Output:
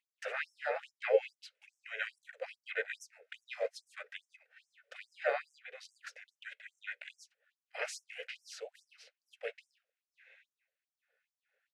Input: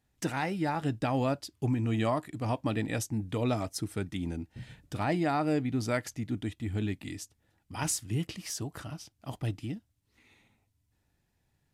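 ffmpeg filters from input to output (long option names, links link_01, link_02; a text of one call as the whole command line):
ffmpeg -i in.wav -filter_complex "[0:a]acrossover=split=180[link_01][link_02];[link_01]alimiter=level_in=11.5dB:limit=-24dB:level=0:latency=1:release=206,volume=-11.5dB[link_03];[link_02]asplit=3[link_04][link_05][link_06];[link_04]bandpass=frequency=530:width_type=q:width=8,volume=0dB[link_07];[link_05]bandpass=frequency=1840:width_type=q:width=8,volume=-6dB[link_08];[link_06]bandpass=frequency=2480:width_type=q:width=8,volume=-9dB[link_09];[link_07][link_08][link_09]amix=inputs=3:normalize=0[link_10];[link_03][link_10]amix=inputs=2:normalize=0,asplit=3[link_11][link_12][link_13];[link_12]asetrate=35002,aresample=44100,atempo=1.25992,volume=-8dB[link_14];[link_13]asetrate=37084,aresample=44100,atempo=1.18921,volume=-1dB[link_15];[link_11][link_14][link_15]amix=inputs=3:normalize=0,afftfilt=real='re*gte(b*sr/1024,410*pow(5400/410,0.5+0.5*sin(2*PI*2.4*pts/sr)))':imag='im*gte(b*sr/1024,410*pow(5400/410,0.5+0.5*sin(2*PI*2.4*pts/sr)))':win_size=1024:overlap=0.75,volume=10.5dB" out.wav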